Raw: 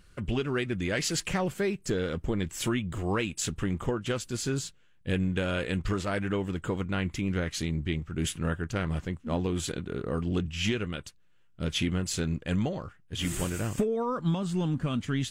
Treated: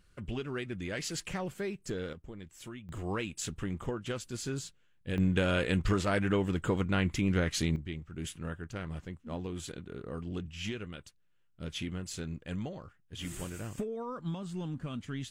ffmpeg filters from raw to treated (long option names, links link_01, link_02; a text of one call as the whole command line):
ffmpeg -i in.wav -af "asetnsamples=nb_out_samples=441:pad=0,asendcmd='2.13 volume volume -16.5dB;2.89 volume volume -6dB;5.18 volume volume 1dB;7.76 volume volume -9dB',volume=-7.5dB" out.wav